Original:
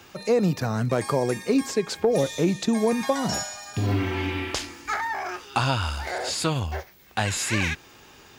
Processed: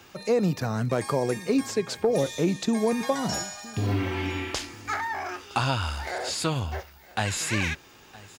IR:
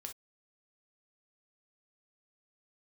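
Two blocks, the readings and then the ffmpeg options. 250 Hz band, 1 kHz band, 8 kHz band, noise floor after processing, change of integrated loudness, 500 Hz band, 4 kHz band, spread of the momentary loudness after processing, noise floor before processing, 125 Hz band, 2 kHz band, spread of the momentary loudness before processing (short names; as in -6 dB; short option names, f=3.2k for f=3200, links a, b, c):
-2.0 dB, -2.0 dB, -2.0 dB, -52 dBFS, -2.0 dB, -2.0 dB, -2.0 dB, 7 LU, -51 dBFS, -2.0 dB, -2.0 dB, 7 LU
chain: -af "aecho=1:1:964:0.0891,volume=-2dB"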